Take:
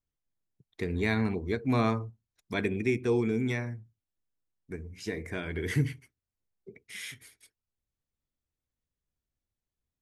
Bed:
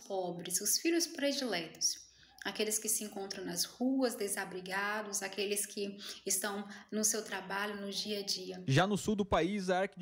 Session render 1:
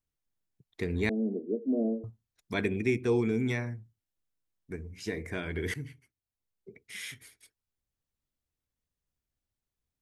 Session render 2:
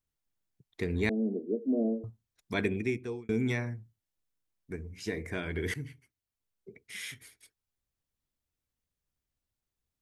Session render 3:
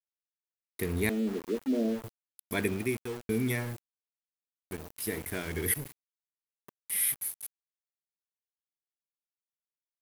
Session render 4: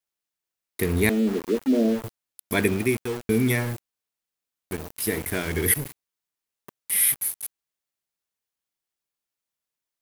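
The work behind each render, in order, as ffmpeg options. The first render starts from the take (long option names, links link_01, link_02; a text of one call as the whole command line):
ffmpeg -i in.wav -filter_complex "[0:a]asettb=1/sr,asplit=3[link_01][link_02][link_03];[link_01]atrim=end=1.094[link_04];[link_02]atrim=start=1.09:end=2.04,asetpts=PTS-STARTPTS,afade=type=in:duration=0.004:curve=qsin,afade=type=out:start_time=0.946:duration=0.004:curve=qsin,asuperpass=centerf=350:order=12:qfactor=0.83[link_05];[link_03]atrim=start=2.036[link_06];[link_04][link_05]acrossfade=duration=0.004:curve1=hsin:curve2=qsin[link_07];[link_07][link_06]acrossfade=duration=0.004:curve1=qsin:curve2=hsin,asplit=2[link_08][link_09];[link_08]atrim=end=5.74,asetpts=PTS-STARTPTS,afade=type=out:start_time=5.736:duration=0.004:curve=hsin:silence=0.177828[link_10];[link_09]atrim=start=5.74,asetpts=PTS-STARTPTS,afade=type=in:duration=1.19:silence=0.177828[link_11];[link_10][link_11]concat=n=2:v=0:a=1" out.wav
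ffmpeg -i in.wav -filter_complex "[0:a]asplit=2[link_01][link_02];[link_01]atrim=end=3.29,asetpts=PTS-STARTPTS,afade=type=out:start_time=2.69:duration=0.6[link_03];[link_02]atrim=start=3.29,asetpts=PTS-STARTPTS,afade=type=in:duration=0.004:curve=hsin[link_04];[link_03][link_04]concat=n=2:v=0:a=1" out.wav
ffmpeg -i in.wav -af "aexciter=amount=15:drive=9.2:freq=10000,aeval=exprs='val(0)*gte(abs(val(0)),0.0119)':channel_layout=same" out.wav
ffmpeg -i in.wav -af "volume=8dB" out.wav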